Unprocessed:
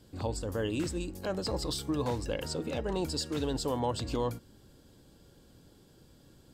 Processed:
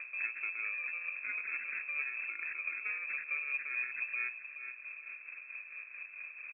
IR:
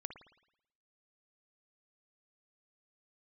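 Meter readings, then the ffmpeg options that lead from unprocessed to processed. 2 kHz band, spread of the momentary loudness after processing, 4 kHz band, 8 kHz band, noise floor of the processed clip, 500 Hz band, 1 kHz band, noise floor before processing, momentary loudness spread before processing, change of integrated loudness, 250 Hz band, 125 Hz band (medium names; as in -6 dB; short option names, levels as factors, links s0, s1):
+13.5 dB, 10 LU, under -40 dB, under -40 dB, -51 dBFS, under -30 dB, -14.5 dB, -60 dBFS, 4 LU, -3.5 dB, under -35 dB, under -40 dB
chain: -filter_complex "[0:a]highpass=62,equalizer=f=1300:w=0.36:g=-4,acrusher=samples=24:mix=1:aa=0.000001,equalizer=f=100:t=o:w=0.67:g=4,equalizer=f=250:t=o:w=0.67:g=10,equalizer=f=1000:t=o:w=0.67:g=8,acompressor=threshold=0.0178:ratio=4,asplit=2[s0][s1];[s1]aecho=0:1:425|850|1275:0.224|0.0672|0.0201[s2];[s0][s2]amix=inputs=2:normalize=0,acompressor=mode=upward:threshold=0.0158:ratio=2.5,tremolo=f=4.5:d=0.49,lowpass=f=2300:t=q:w=0.5098,lowpass=f=2300:t=q:w=0.6013,lowpass=f=2300:t=q:w=0.9,lowpass=f=2300:t=q:w=2.563,afreqshift=-2700,crystalizer=i=5:c=0,volume=0.531"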